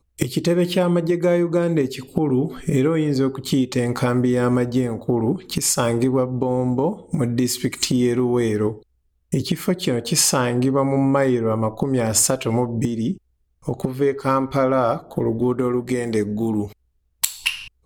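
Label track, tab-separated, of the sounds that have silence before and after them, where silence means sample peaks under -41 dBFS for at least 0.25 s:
9.320000	13.180000	sound
13.630000	16.730000	sound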